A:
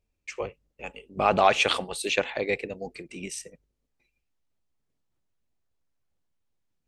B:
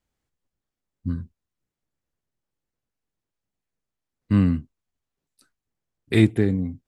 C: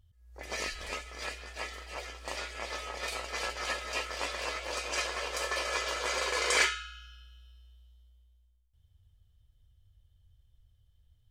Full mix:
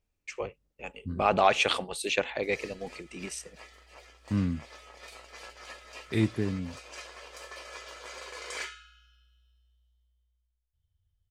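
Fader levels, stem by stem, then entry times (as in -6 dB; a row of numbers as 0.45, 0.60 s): -2.5, -9.5, -11.5 dB; 0.00, 0.00, 2.00 s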